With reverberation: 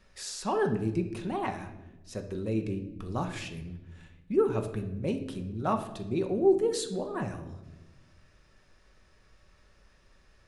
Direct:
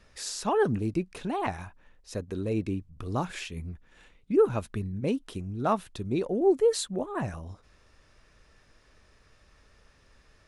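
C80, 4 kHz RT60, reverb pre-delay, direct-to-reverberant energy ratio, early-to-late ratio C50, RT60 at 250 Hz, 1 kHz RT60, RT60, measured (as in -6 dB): 13.0 dB, 0.75 s, 5 ms, 5.0 dB, 10.0 dB, 1.7 s, 0.80 s, 1.1 s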